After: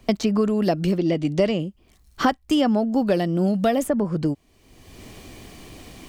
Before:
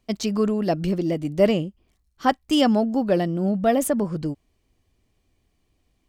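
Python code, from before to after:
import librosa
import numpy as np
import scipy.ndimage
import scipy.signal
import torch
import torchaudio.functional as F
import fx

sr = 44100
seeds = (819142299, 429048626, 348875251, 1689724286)

y = fx.lowpass(x, sr, hz=fx.line((0.96, 3300.0), (1.58, 7300.0)), slope=12, at=(0.96, 1.58), fade=0.02)
y = fx.band_squash(y, sr, depth_pct=100)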